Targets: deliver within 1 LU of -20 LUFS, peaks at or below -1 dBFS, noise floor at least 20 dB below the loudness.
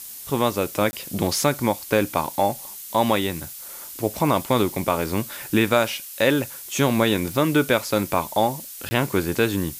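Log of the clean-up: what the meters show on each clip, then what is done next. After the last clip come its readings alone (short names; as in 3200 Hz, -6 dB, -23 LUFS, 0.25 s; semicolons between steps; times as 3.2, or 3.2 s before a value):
dropouts 2; longest dropout 20 ms; noise floor -38 dBFS; noise floor target -43 dBFS; loudness -22.5 LUFS; peak -5.5 dBFS; loudness target -20.0 LUFS
-> interpolate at 0.91/8.89, 20 ms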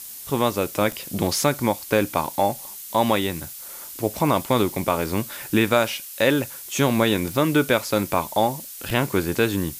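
dropouts 0; noise floor -38 dBFS; noise floor target -43 dBFS
-> noise print and reduce 6 dB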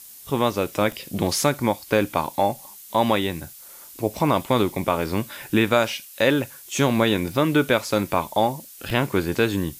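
noise floor -44 dBFS; loudness -23.0 LUFS; peak -6.0 dBFS; loudness target -20.0 LUFS
-> gain +3 dB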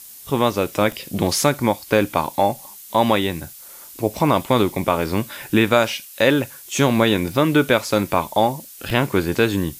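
loudness -20.0 LUFS; peak -3.0 dBFS; noise floor -41 dBFS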